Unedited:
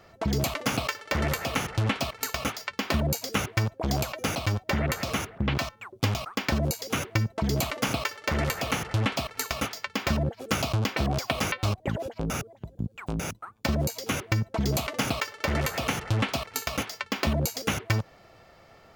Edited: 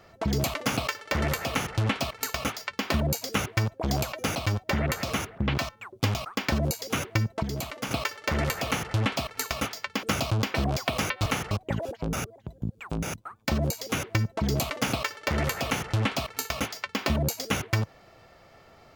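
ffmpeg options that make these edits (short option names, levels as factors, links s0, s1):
-filter_complex "[0:a]asplit=6[s0][s1][s2][s3][s4][s5];[s0]atrim=end=7.432[s6];[s1]atrim=start=7.428:end=7.912,asetpts=PTS-STARTPTS,volume=0.501[s7];[s2]atrim=start=7.908:end=10.032[s8];[s3]atrim=start=10.448:end=11.682[s9];[s4]atrim=start=1.498:end=1.752[s10];[s5]atrim=start=11.678[s11];[s6][s7]acrossfade=d=0.004:c1=hsin:c2=hsin[s12];[s12][s8]acrossfade=d=0.004:c1=hsin:c2=hsin[s13];[s13][s9]acrossfade=d=0.004:c1=hsin:c2=hsin[s14];[s14][s10]acrossfade=d=0.004:c1=hsin:c2=hsin[s15];[s15][s11]acrossfade=d=0.004:c1=hsin:c2=hsin"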